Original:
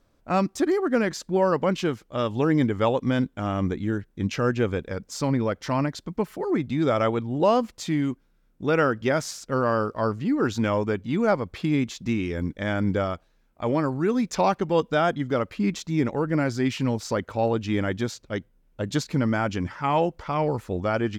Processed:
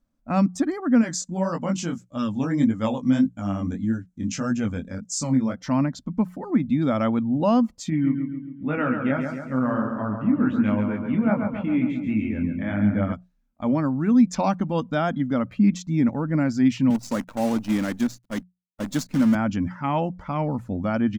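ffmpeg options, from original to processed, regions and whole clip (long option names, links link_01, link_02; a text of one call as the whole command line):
ffmpeg -i in.wav -filter_complex "[0:a]asettb=1/sr,asplit=3[link_01][link_02][link_03];[link_01]atrim=end=1.014[link_04];[link_02]atrim=start=1.01:end=5.56,asetpts=PTS-STARTPTS,afade=type=in:duration=0.004:curve=qsin,afade=type=out:start_time=4.546:duration=0.004:curve=qsin,equalizer=frequency=7200:width_type=o:width=1.1:gain=13,flanger=delay=17:depth=6.4:speed=1.7[link_05];[link_03]atrim=start=5.556[link_06];[link_04][link_05]acrossfade=duration=0.004:curve1=hsin:curve2=qsin[link_07];[link_07][link_06]acrossfade=duration=0.004:curve1=qsin:curve2=hsin,asettb=1/sr,asplit=3[link_08][link_09][link_10];[link_08]atrim=end=7.904[link_11];[link_09]atrim=start=7.9:end=13.13,asetpts=PTS-STARTPTS,afade=type=in:duration=0.004:curve=qsin,afade=type=out:start_time=5.226:duration=0.004:curve=qsin,highshelf=frequency=3700:width_type=q:width=1.5:gain=-11.5,flanger=delay=19:depth=5.3:speed=1.4,aecho=1:1:136|272|408|544|680|816|952:0.501|0.286|0.163|0.0928|0.0529|0.0302|0.0172,atrim=end_sample=230643[link_12];[link_10]atrim=start=13.126[link_13];[link_11][link_12]acrossfade=duration=0.004:curve1=hsin:curve2=qsin[link_14];[link_14][link_13]acrossfade=duration=0.004:curve1=qsin:curve2=hsin,asettb=1/sr,asplit=3[link_15][link_16][link_17];[link_15]atrim=end=16.904[link_18];[link_16]atrim=start=16.9:end=19.35,asetpts=PTS-STARTPTS,afade=type=in:duration=0.004:curve=qsin,afade=type=out:start_time=2.446:duration=0.004:curve=qsin,highpass=170,acrusher=bits=6:dc=4:mix=0:aa=0.000001[link_19];[link_17]atrim=start=19.346[link_20];[link_18][link_19]acrossfade=duration=0.004:curve1=hsin:curve2=qsin[link_21];[link_21][link_20]acrossfade=duration=0.004:curve1=qsin:curve2=hsin,bandreject=frequency=60:width_type=h:width=6,bandreject=frequency=120:width_type=h:width=6,bandreject=frequency=180:width_type=h:width=6,afftdn=noise_reduction=12:noise_floor=-45,firequalizer=gain_entry='entry(120,0);entry(240,10);entry(390,-11);entry(570,-2);entry(3900,-4);entry(6400,1)':delay=0.05:min_phase=1" out.wav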